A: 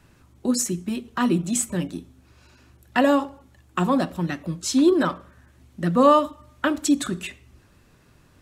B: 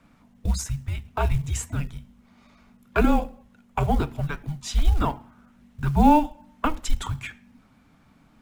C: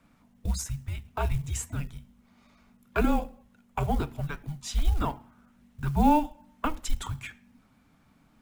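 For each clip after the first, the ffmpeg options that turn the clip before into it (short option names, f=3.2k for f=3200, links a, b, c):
-af "bass=f=250:g=-2,treble=f=4k:g=-9,afreqshift=-310,acrusher=bits=8:mode=log:mix=0:aa=0.000001"
-af "highshelf=f=8.6k:g=6,volume=-5dB"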